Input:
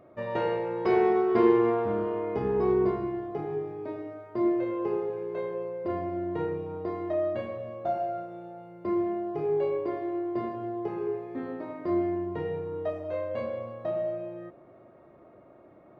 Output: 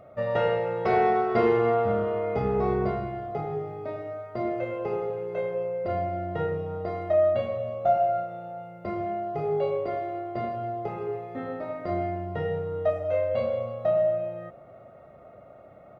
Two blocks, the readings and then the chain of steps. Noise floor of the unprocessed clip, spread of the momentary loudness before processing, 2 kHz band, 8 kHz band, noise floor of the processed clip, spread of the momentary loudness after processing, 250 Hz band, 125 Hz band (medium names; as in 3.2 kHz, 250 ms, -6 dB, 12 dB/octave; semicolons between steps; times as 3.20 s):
-54 dBFS, 13 LU, +4.5 dB, no reading, -50 dBFS, 12 LU, -4.5 dB, +6.0 dB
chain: comb 1.5 ms, depth 71%; trim +3 dB